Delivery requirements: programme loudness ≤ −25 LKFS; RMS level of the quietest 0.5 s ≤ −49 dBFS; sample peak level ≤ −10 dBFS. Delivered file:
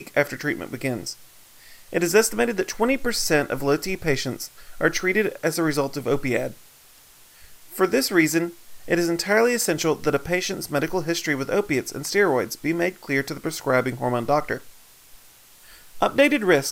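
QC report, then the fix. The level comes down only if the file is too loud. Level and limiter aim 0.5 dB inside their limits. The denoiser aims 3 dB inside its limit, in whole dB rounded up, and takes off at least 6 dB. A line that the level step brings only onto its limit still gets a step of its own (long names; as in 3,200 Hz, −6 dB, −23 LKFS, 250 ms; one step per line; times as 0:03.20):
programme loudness −23.0 LKFS: out of spec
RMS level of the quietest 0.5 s −51 dBFS: in spec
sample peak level −5.0 dBFS: out of spec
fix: level −2.5 dB
brickwall limiter −10.5 dBFS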